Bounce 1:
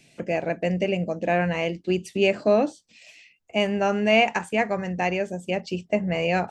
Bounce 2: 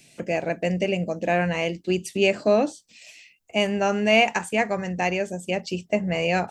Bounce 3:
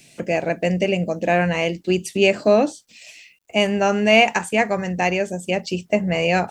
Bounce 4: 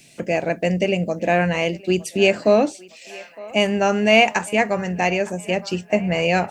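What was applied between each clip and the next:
high-shelf EQ 5,700 Hz +10.5 dB
bit reduction 12 bits; level +4 dB
feedback echo with a band-pass in the loop 911 ms, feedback 64%, band-pass 1,200 Hz, level −17.5 dB

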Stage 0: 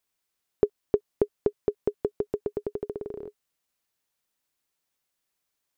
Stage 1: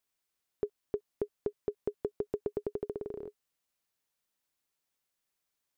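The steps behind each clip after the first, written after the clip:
brickwall limiter −17 dBFS, peak gain reduction 9 dB
level −3.5 dB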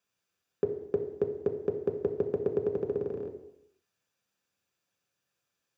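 convolution reverb RT60 0.85 s, pre-delay 3 ms, DRR 3.5 dB
level −3 dB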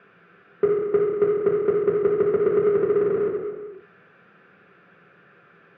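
power curve on the samples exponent 0.5
loudspeaker in its box 160–2,100 Hz, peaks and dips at 170 Hz +9 dB, 270 Hz −4 dB, 400 Hz +7 dB, 580 Hz −3 dB, 910 Hz −9 dB, 1,400 Hz +6 dB

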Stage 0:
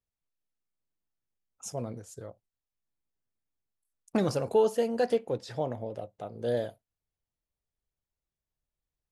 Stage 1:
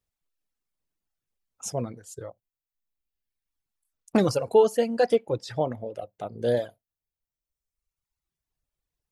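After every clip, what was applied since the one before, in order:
reverb reduction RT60 1.4 s
level +6 dB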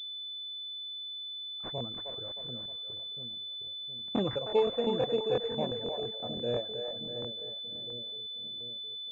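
echo with a time of its own for lows and highs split 440 Hz, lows 715 ms, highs 311 ms, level −5 dB
regular buffer underruns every 0.17 s, samples 1,024, repeat, from 0:00.57
switching amplifier with a slow clock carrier 3,500 Hz
level −8.5 dB

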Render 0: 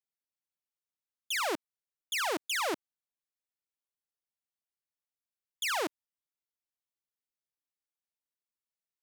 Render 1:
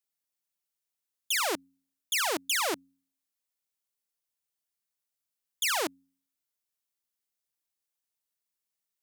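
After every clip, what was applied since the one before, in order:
high-shelf EQ 4,300 Hz +8 dB
hum removal 90.42 Hz, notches 3
level +1 dB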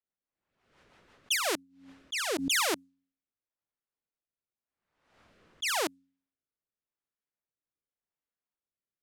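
rotating-speaker cabinet horn 6 Hz, later 0.9 Hz, at 0:01.13
low-pass that shuts in the quiet parts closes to 1,600 Hz, open at −29 dBFS
background raised ahead of every attack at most 71 dB per second
level +2.5 dB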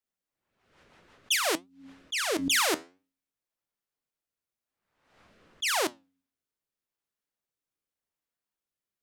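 flanger 0.55 Hz, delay 3.4 ms, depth 9.8 ms, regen +79%
level +7 dB

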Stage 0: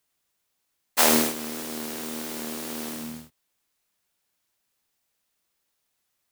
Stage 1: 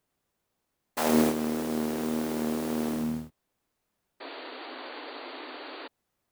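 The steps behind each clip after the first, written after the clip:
brickwall limiter −14 dBFS, peak gain reduction 10 dB
sound drawn into the spectrogram noise, 0:04.20–0:05.88, 250–4,700 Hz −41 dBFS
tilt shelving filter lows +7.5 dB, about 1,400 Hz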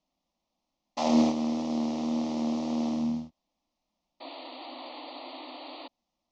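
Butterworth low-pass 6,200 Hz 48 dB per octave
phaser with its sweep stopped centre 420 Hz, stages 6
level +2 dB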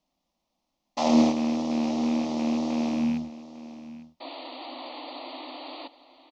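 loose part that buzzes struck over −32 dBFS, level −35 dBFS
single-tap delay 852 ms −16 dB
level +3 dB

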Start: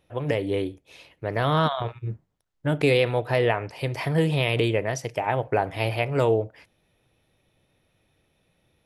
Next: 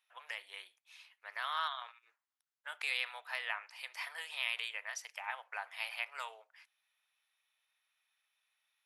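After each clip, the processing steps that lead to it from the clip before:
inverse Chebyshev high-pass filter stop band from 240 Hz, stop band 70 dB
level −8 dB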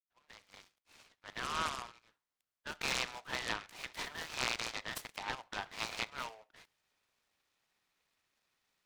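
fade in at the beginning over 1.76 s
short delay modulated by noise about 1,400 Hz, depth 0.067 ms
level +1 dB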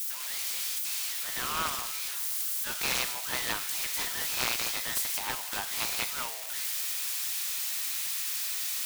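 spike at every zero crossing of −28 dBFS
level +3.5 dB

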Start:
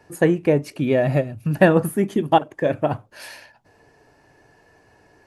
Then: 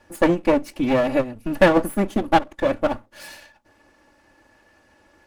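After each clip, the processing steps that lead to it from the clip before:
lower of the sound and its delayed copy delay 3.5 ms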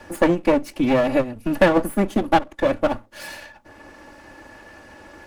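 multiband upward and downward compressor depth 40%
level +1 dB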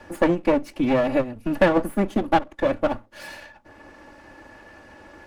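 high-shelf EQ 5,300 Hz −6.5 dB
level −2 dB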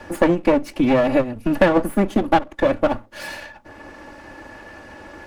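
downward compressor 1.5 to 1, threshold −24 dBFS, peak gain reduction 5 dB
level +6.5 dB

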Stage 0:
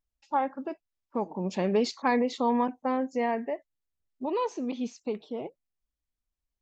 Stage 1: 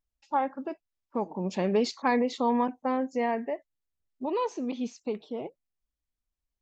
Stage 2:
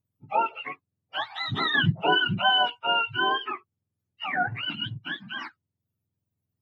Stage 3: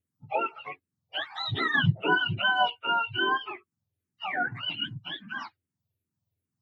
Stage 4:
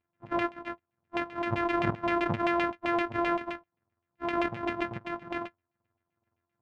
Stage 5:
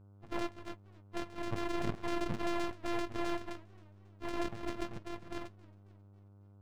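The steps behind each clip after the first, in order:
no processing that can be heard
frequency axis turned over on the octave scale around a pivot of 850 Hz; level +5.5 dB
frequency shifter mixed with the dry sound −2.5 Hz; level +1.5 dB
samples sorted by size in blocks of 128 samples; brickwall limiter −21 dBFS, peak gain reduction 9.5 dB; auto-filter low-pass saw down 7.7 Hz 780–2,800 Hz
half-wave rectification; hum with harmonics 100 Hz, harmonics 15, −56 dBFS −9 dB per octave; feedback echo with a swinging delay time 271 ms, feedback 50%, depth 149 cents, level −24 dB; level −2 dB

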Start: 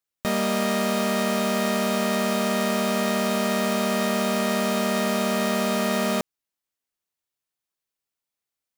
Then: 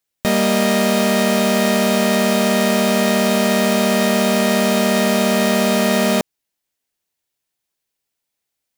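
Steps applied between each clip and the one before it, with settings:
parametric band 1,200 Hz −5.5 dB 0.43 octaves
level +8 dB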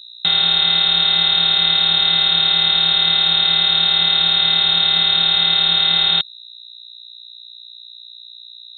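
hum with harmonics 60 Hz, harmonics 6, −42 dBFS −4 dB per octave
graphic EQ with 15 bands 160 Hz +7 dB, 630 Hz −6 dB, 1,600 Hz −5 dB
voice inversion scrambler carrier 3,900 Hz

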